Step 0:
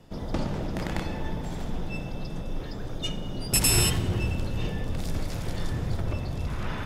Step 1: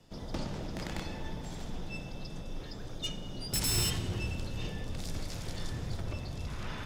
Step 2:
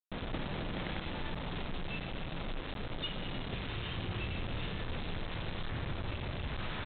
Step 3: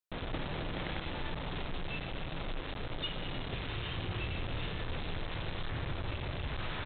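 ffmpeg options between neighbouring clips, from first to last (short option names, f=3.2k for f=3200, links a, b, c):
-filter_complex "[0:a]equalizer=f=5.6k:w=0.59:g=7.5,acrossover=split=330[a][b];[b]asoftclip=type=hard:threshold=-20dB[c];[a][c]amix=inputs=2:normalize=0,volume=-8dB"
-af "acompressor=threshold=-35dB:ratio=8,aresample=8000,acrusher=bits=6:mix=0:aa=0.000001,aresample=44100,volume=1.5dB"
-af "equalizer=f=210:t=o:w=0.41:g=-5.5,volume=1dB"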